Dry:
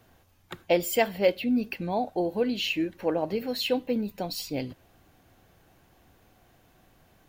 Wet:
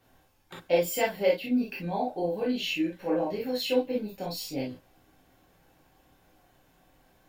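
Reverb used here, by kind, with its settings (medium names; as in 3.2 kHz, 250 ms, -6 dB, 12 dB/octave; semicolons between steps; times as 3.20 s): gated-style reverb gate 80 ms flat, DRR -5 dB; trim -8 dB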